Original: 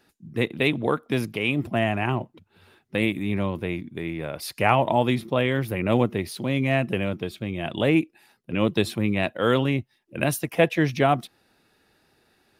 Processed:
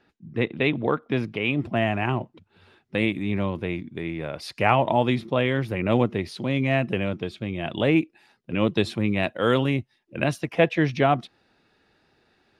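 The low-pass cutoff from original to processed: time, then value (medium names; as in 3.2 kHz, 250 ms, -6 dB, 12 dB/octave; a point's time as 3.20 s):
1.29 s 3.3 kHz
1.92 s 6.1 kHz
8.77 s 6.1 kHz
9.72 s 11 kHz
10.17 s 5 kHz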